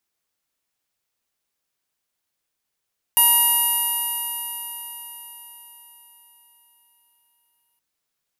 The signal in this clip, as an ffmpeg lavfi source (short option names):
-f lavfi -i "aevalsrc='0.0794*pow(10,-3*t/4.78)*sin(2*PI*947.34*t)+0.0168*pow(10,-3*t/4.78)*sin(2*PI*1896.69*t)+0.075*pow(10,-3*t/4.78)*sin(2*PI*2850.06*t)+0.00891*pow(10,-3*t/4.78)*sin(2*PI*3809.46*t)+0.01*pow(10,-3*t/4.78)*sin(2*PI*4776.84*t)+0.00891*pow(10,-3*t/4.78)*sin(2*PI*5754.16*t)+0.0126*pow(10,-3*t/4.78)*sin(2*PI*6743.33*t)+0.0141*pow(10,-3*t/4.78)*sin(2*PI*7746.21*t)+0.0188*pow(10,-3*t/4.78)*sin(2*PI*8764.65*t)+0.15*pow(10,-3*t/4.78)*sin(2*PI*9800.42*t)+0.0562*pow(10,-3*t/4.78)*sin(2*PI*10855.24*t)+0.141*pow(10,-3*t/4.78)*sin(2*PI*11930.79*t)+0.126*pow(10,-3*t/4.78)*sin(2*PI*13028.68*t)':d=4.62:s=44100"